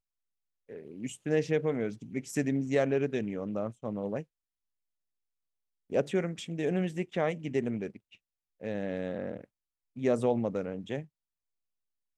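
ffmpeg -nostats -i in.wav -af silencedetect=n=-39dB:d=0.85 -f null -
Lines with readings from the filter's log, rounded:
silence_start: 4.22
silence_end: 5.92 | silence_duration: 1.70
silence_start: 11.02
silence_end: 12.18 | silence_duration: 1.15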